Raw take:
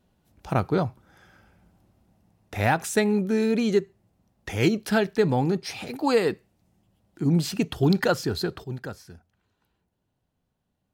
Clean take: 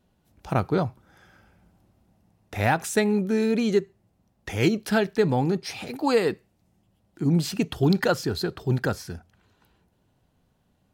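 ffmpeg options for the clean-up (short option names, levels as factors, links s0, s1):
-af "asetnsamples=n=441:p=0,asendcmd='8.64 volume volume 10dB',volume=1"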